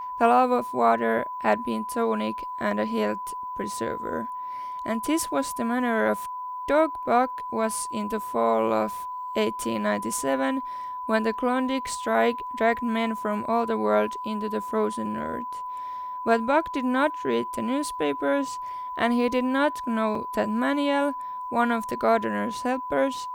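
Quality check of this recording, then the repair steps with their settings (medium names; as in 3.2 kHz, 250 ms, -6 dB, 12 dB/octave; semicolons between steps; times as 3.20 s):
whine 1 kHz -31 dBFS
20.15 s: dropout 3.6 ms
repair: band-stop 1 kHz, Q 30; interpolate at 20.15 s, 3.6 ms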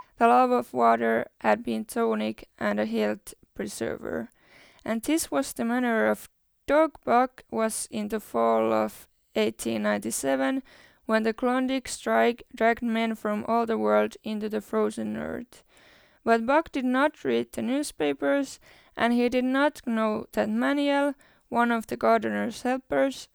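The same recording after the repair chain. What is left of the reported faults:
nothing left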